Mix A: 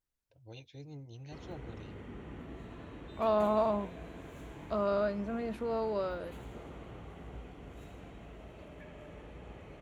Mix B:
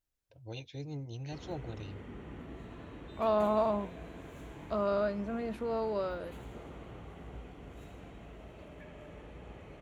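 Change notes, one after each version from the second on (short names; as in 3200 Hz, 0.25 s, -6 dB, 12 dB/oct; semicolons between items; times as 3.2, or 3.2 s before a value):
first voice +6.5 dB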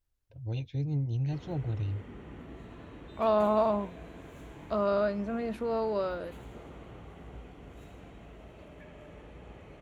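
first voice: add tone controls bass +13 dB, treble -7 dB; second voice +3.0 dB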